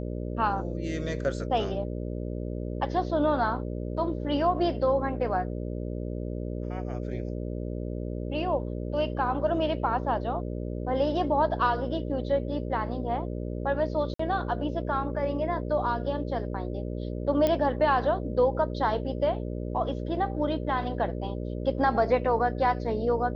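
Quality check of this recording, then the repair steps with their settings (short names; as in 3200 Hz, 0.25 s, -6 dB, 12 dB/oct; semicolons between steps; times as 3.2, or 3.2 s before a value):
buzz 60 Hz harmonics 10 -33 dBFS
14.14–14.19 gap 54 ms
17.47 pop -13 dBFS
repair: de-click; de-hum 60 Hz, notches 10; interpolate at 14.14, 54 ms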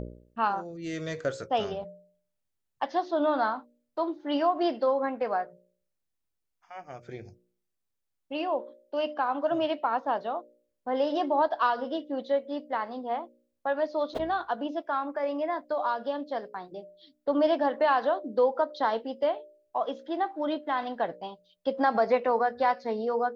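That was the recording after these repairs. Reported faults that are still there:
none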